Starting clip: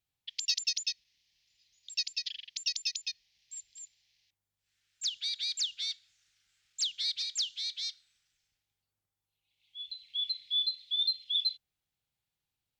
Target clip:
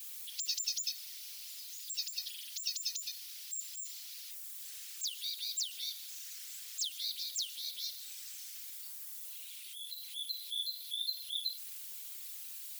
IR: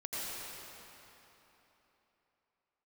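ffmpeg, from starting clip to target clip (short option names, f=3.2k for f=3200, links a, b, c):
-af "aeval=exprs='val(0)+0.5*0.015*sgn(val(0))':c=same,aderivative,afftfilt=real='hypot(re,im)*cos(2*PI*random(0))':imag='hypot(re,im)*sin(2*PI*random(1))':win_size=512:overlap=0.75,equalizer=f=500:w=2.8:g=-10,volume=3dB"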